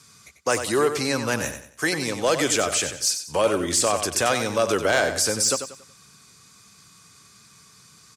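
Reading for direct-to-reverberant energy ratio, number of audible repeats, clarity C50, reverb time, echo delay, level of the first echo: no reverb audible, 3, no reverb audible, no reverb audible, 93 ms, −9.0 dB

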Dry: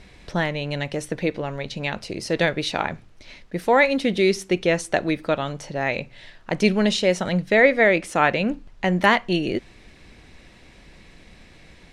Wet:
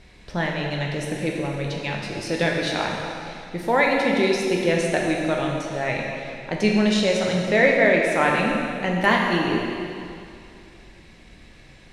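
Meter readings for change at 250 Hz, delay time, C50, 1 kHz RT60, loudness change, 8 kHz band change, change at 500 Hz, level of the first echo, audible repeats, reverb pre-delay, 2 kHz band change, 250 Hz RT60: +1.0 dB, no echo audible, 1.0 dB, 2.6 s, 0.0 dB, 0.0 dB, 0.0 dB, no echo audible, no echo audible, 6 ms, 0.0 dB, 2.5 s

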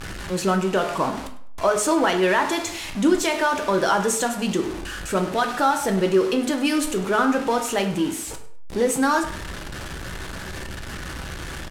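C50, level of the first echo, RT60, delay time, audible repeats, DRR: 10.0 dB, −16.5 dB, 0.55 s, 101 ms, 1, 4.5 dB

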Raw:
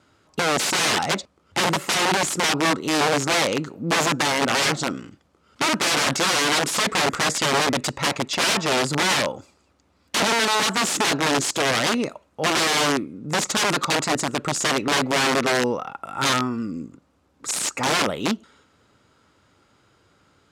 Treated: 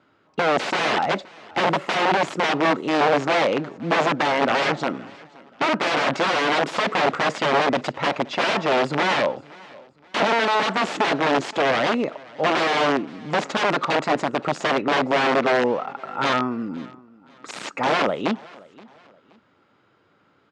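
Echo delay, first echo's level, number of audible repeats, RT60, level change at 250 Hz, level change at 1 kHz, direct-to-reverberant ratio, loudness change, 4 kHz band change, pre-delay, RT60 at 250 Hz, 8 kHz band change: 523 ms, −23.0 dB, 2, no reverb audible, 0.0 dB, +2.5 dB, no reverb audible, −0.5 dB, −5.5 dB, no reverb audible, no reverb audible, −16.0 dB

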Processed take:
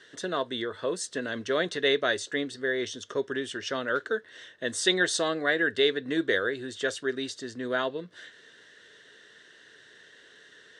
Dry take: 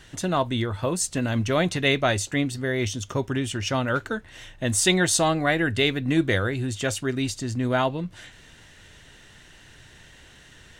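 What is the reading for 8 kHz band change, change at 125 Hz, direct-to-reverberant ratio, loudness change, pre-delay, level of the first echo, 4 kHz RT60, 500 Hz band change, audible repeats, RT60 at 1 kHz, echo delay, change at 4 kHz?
−9.5 dB, −19.0 dB, no reverb audible, −4.5 dB, no reverb audible, no echo audible, no reverb audible, −2.0 dB, no echo audible, no reverb audible, no echo audible, −2.5 dB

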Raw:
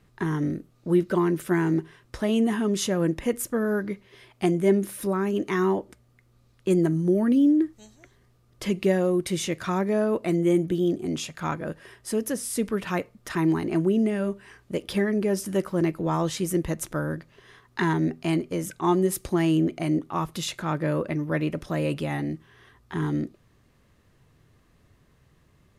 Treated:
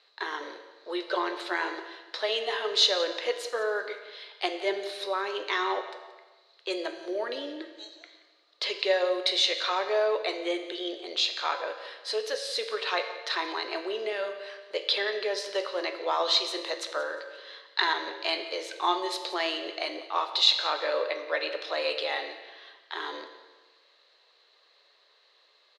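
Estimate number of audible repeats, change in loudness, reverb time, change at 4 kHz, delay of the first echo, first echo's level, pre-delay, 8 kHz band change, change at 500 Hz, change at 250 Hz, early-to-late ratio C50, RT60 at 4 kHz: 2, −3.5 dB, 1.3 s, +12.0 dB, 178 ms, −18.0 dB, 9 ms, −6.5 dB, −3.5 dB, −18.0 dB, 8.0 dB, 1.1 s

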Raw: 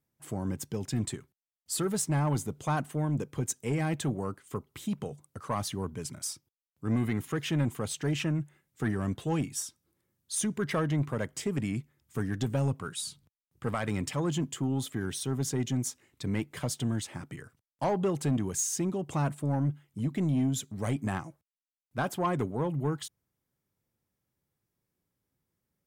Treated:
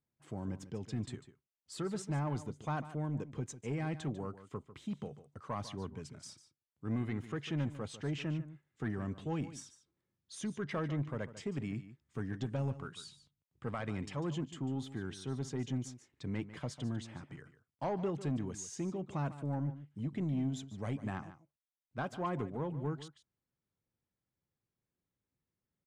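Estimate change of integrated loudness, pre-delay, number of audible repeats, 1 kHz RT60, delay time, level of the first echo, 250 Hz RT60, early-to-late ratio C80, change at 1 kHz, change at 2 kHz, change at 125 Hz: −7.5 dB, no reverb audible, 1, no reverb audible, 147 ms, −14.0 dB, no reverb audible, no reverb audible, −7.5 dB, −7.5 dB, −7.0 dB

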